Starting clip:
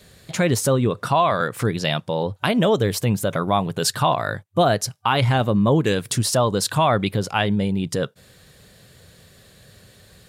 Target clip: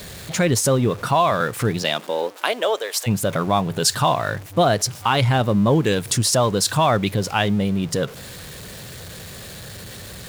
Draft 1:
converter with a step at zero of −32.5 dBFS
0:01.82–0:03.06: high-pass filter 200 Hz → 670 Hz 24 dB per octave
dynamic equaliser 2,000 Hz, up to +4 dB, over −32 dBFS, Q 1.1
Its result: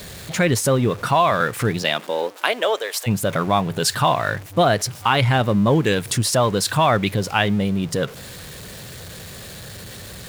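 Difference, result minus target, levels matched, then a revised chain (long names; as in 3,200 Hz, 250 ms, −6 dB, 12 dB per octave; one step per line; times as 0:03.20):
8,000 Hz band −3.0 dB
converter with a step at zero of −32.5 dBFS
0:01.82–0:03.06: high-pass filter 200 Hz → 670 Hz 24 dB per octave
dynamic equaliser 6,300 Hz, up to +4 dB, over −32 dBFS, Q 1.1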